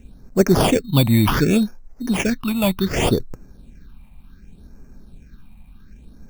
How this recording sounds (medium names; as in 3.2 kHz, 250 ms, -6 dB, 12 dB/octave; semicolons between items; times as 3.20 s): aliases and images of a low sample rate 4 kHz, jitter 0%; phasing stages 6, 0.67 Hz, lowest notch 400–3400 Hz